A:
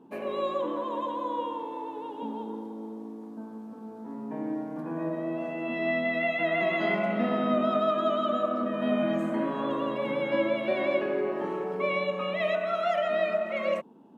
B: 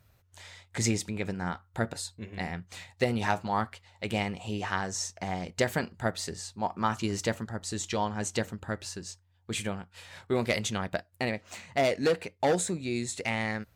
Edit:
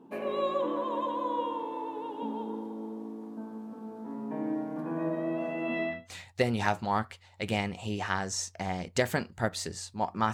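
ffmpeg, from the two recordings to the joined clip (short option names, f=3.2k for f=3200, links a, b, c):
-filter_complex "[0:a]apad=whole_dur=10.33,atrim=end=10.33,atrim=end=6.1,asetpts=PTS-STARTPTS[a];[1:a]atrim=start=2.42:end=6.95,asetpts=PTS-STARTPTS[b];[a][b]acrossfade=d=0.3:c1=qua:c2=qua"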